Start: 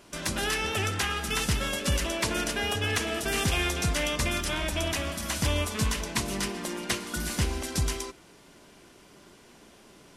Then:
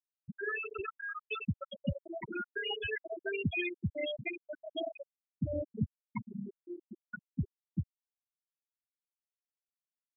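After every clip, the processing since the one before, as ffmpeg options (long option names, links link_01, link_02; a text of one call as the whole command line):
ffmpeg -i in.wav -af "highpass=130,afftfilt=real='re*gte(hypot(re,im),0.178)':imag='im*gte(hypot(re,im),0.178)':win_size=1024:overlap=0.75" out.wav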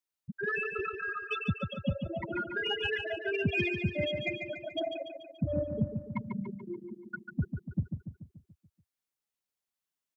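ffmpeg -i in.wav -filter_complex "[0:a]asplit=2[link_01][link_02];[link_02]asoftclip=type=tanh:threshold=-29dB,volume=-5dB[link_03];[link_01][link_03]amix=inputs=2:normalize=0,aecho=1:1:144|288|432|576|720|864|1008:0.473|0.256|0.138|0.0745|0.0402|0.0217|0.0117" out.wav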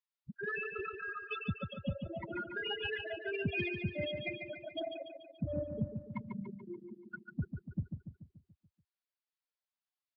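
ffmpeg -i in.wav -af "aresample=11025,aresample=44100,volume=-5.5dB" -ar 44100 -c:a libvorbis -b:a 64k out.ogg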